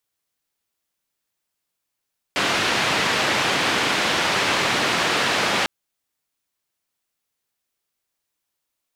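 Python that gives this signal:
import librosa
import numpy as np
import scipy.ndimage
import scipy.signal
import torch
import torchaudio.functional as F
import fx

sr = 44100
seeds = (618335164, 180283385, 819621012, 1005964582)

y = fx.band_noise(sr, seeds[0], length_s=3.3, low_hz=130.0, high_hz=3000.0, level_db=-21.0)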